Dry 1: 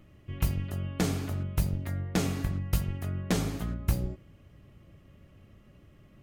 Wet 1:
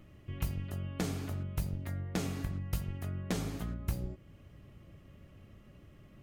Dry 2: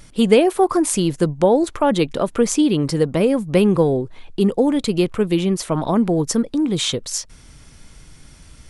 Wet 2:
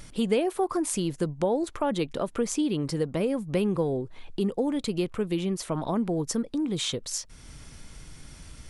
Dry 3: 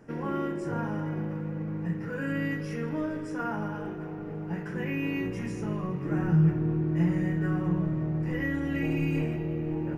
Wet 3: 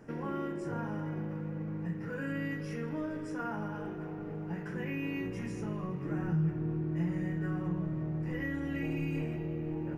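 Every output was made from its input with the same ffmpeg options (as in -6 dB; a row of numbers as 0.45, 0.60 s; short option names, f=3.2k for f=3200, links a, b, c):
-af "acompressor=threshold=-42dB:ratio=1.5"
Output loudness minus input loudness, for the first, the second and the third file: -6.0, -10.0, -6.0 LU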